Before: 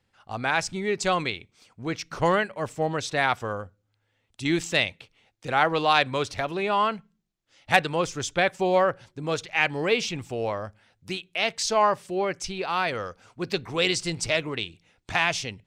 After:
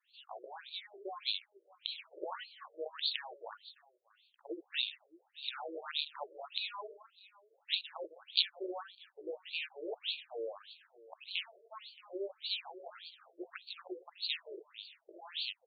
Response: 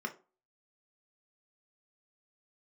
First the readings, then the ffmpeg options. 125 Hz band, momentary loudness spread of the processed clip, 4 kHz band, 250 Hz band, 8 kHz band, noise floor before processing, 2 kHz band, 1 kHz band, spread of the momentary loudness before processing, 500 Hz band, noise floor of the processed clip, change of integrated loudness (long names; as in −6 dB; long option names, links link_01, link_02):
below −40 dB, 16 LU, −6.0 dB, −21.5 dB, below −40 dB, −74 dBFS, −19.5 dB, −23.0 dB, 13 LU, −18.5 dB, −75 dBFS, −14.0 dB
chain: -filter_complex "[0:a]equalizer=frequency=100:width_type=o:width=0.55:gain=3.5,acrossover=split=280[link_01][link_02];[link_02]acompressor=threshold=-39dB:ratio=5[link_03];[link_01][link_03]amix=inputs=2:normalize=0,flanger=delay=16:depth=5.7:speed=0.22,asplit=2[link_04][link_05];[link_05]aecho=0:1:168|623:0.211|0.106[link_06];[link_04][link_06]amix=inputs=2:normalize=0,aeval=exprs='(mod(21.1*val(0)+1,2)-1)/21.1':channel_layout=same,aexciter=amount=4.9:drive=9.9:freq=3200,afftfilt=real='re*between(b*sr/1024,430*pow(3300/430,0.5+0.5*sin(2*PI*1.7*pts/sr))/1.41,430*pow(3300/430,0.5+0.5*sin(2*PI*1.7*pts/sr))*1.41)':imag='im*between(b*sr/1024,430*pow(3300/430,0.5+0.5*sin(2*PI*1.7*pts/sr))/1.41,430*pow(3300/430,0.5+0.5*sin(2*PI*1.7*pts/sr))*1.41)':win_size=1024:overlap=0.75"